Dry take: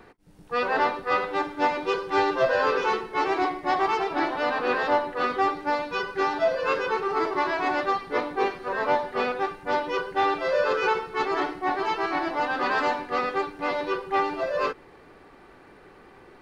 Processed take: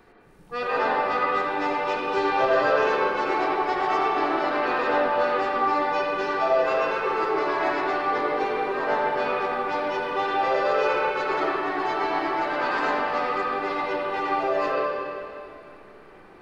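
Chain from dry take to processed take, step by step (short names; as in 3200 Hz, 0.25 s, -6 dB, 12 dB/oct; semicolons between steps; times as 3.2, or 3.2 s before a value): high shelf 6300 Hz +4.5 dB; reverb RT60 2.4 s, pre-delay 35 ms, DRR -5 dB; gain -5 dB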